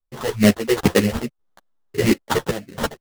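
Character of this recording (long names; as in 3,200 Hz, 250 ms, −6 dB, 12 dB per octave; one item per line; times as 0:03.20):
phaser sweep stages 8, 2.4 Hz, lowest notch 200–3,400 Hz
aliases and images of a low sample rate 2,400 Hz, jitter 20%
sample-and-hold tremolo 3.6 Hz, depth 90%
a shimmering, thickened sound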